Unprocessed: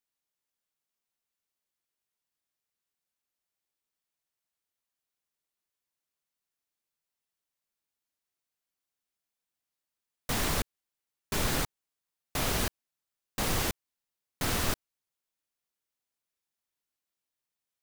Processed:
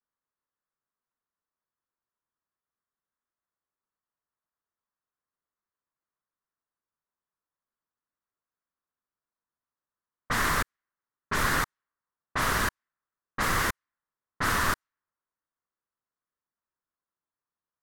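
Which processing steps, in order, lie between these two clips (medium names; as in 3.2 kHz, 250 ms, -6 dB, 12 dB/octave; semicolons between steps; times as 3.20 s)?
high-order bell 1.4 kHz +11 dB 1.2 oct; level-controlled noise filter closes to 910 Hz, open at -23.5 dBFS; vibrato 0.39 Hz 36 cents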